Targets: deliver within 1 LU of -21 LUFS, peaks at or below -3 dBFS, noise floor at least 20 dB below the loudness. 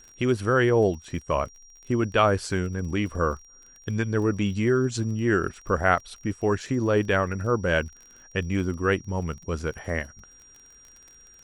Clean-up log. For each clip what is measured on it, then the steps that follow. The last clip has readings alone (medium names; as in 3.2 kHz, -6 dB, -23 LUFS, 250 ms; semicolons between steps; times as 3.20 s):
tick rate 29 per s; steady tone 5.7 kHz; tone level -50 dBFS; loudness -25.5 LUFS; peak level -5.0 dBFS; loudness target -21.0 LUFS
-> de-click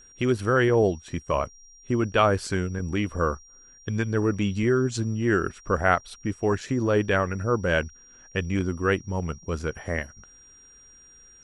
tick rate 0 per s; steady tone 5.7 kHz; tone level -50 dBFS
-> band-stop 5.7 kHz, Q 30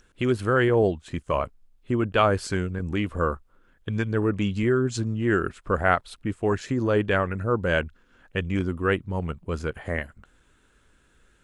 steady tone not found; loudness -25.5 LUFS; peak level -5.0 dBFS; loudness target -21.0 LUFS
-> trim +4.5 dB; peak limiter -3 dBFS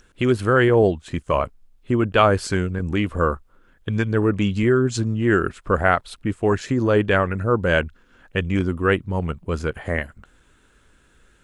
loudness -21.0 LUFS; peak level -3.0 dBFS; noise floor -58 dBFS